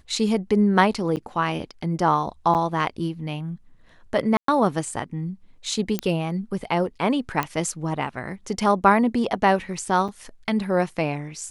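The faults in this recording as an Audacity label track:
1.160000	1.170000	drop-out 8.6 ms
2.540000	2.550000	drop-out 8.8 ms
4.370000	4.480000	drop-out 113 ms
5.990000	5.990000	click −9 dBFS
7.430000	7.430000	click −10 dBFS
10.080000	10.090000	drop-out 6.5 ms

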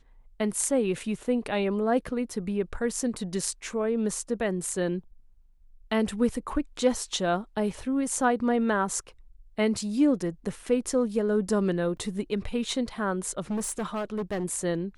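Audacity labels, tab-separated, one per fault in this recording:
11.970000	11.970000	drop-out 2.4 ms
13.500000	14.450000	clipping −26 dBFS

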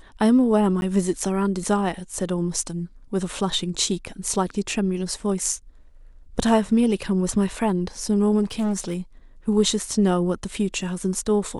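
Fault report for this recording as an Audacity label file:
0.810000	0.820000	drop-out
8.430000	8.970000	clipping −20.5 dBFS

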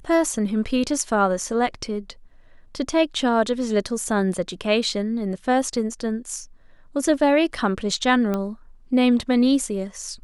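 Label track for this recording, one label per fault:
8.340000	8.340000	click −13 dBFS

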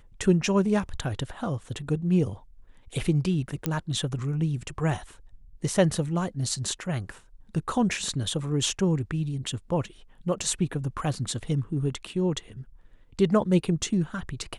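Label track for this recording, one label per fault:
3.660000	3.660000	click −12 dBFS

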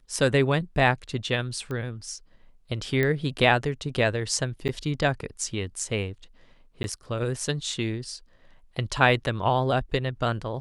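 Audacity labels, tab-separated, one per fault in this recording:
1.710000	1.710000	click −22 dBFS
3.030000	3.030000	click −13 dBFS
4.680000	4.690000	drop-out 8.9 ms
6.830000	6.840000	drop-out 11 ms

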